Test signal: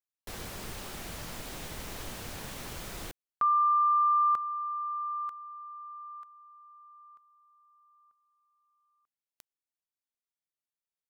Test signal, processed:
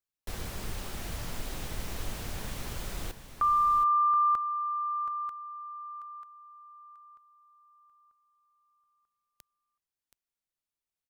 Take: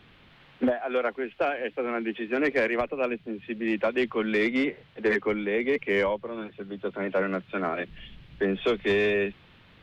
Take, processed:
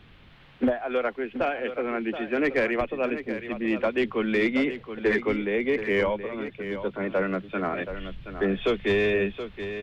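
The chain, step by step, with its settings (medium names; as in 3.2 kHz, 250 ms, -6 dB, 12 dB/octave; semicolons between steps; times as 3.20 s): bass shelf 100 Hz +10 dB; delay 725 ms -10.5 dB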